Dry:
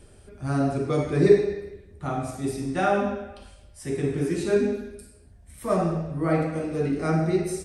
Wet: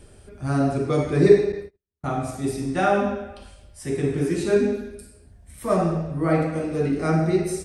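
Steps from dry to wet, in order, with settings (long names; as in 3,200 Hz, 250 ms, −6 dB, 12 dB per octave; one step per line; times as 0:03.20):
0:01.52–0:02.19: noise gate −35 dBFS, range −45 dB
level +2.5 dB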